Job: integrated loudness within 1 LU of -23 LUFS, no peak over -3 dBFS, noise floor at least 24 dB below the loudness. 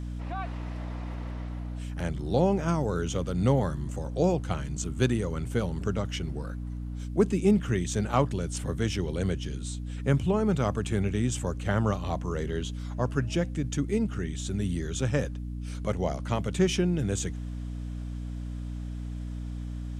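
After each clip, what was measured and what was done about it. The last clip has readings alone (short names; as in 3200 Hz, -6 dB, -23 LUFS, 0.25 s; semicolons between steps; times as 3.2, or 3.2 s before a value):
hum 60 Hz; harmonics up to 300 Hz; hum level -32 dBFS; loudness -30.0 LUFS; peak -10.0 dBFS; loudness target -23.0 LUFS
-> notches 60/120/180/240/300 Hz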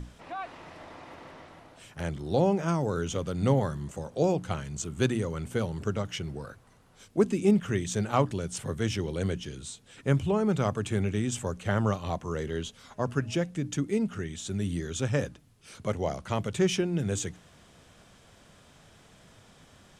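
hum none; loudness -30.0 LUFS; peak -10.5 dBFS; loudness target -23.0 LUFS
-> gain +7 dB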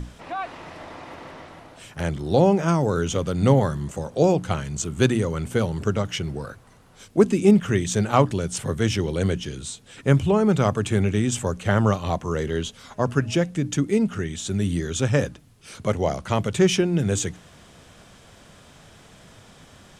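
loudness -23.0 LUFS; peak -3.5 dBFS; noise floor -51 dBFS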